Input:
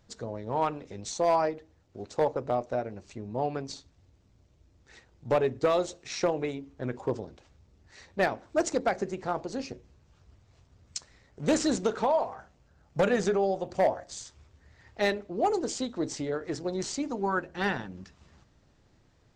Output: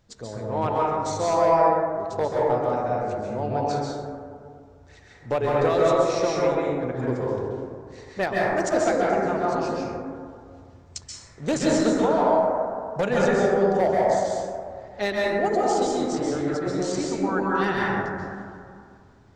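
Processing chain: plate-style reverb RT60 2.2 s, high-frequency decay 0.25×, pre-delay 120 ms, DRR -5.5 dB

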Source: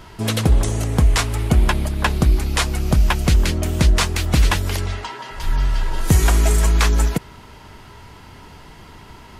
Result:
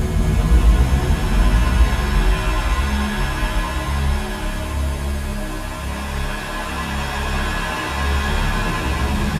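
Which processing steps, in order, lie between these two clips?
Paulstretch 15×, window 0.50 s, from 1.53 s; on a send: two-band feedback delay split 600 Hz, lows 139 ms, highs 219 ms, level -5 dB; on the sum: endless flanger 11.6 ms +0.97 Hz

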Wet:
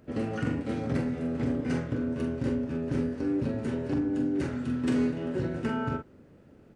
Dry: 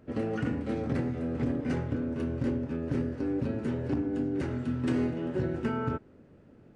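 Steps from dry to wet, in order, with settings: treble shelf 4.2 kHz +6 dB; doubling 44 ms -6 dB

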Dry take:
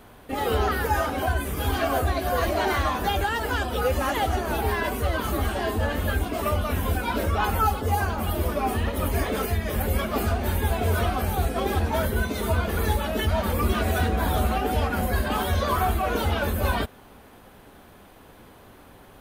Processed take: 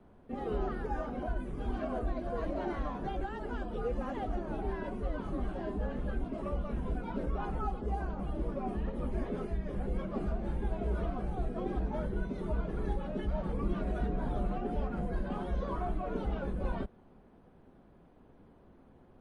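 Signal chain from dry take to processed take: FFT filter 110 Hz 0 dB, 290 Hz +2 dB, 920 Hz -6 dB, 10 kHz -24 dB; frequency shift -27 Hz; trim -8 dB; MP3 48 kbps 44.1 kHz

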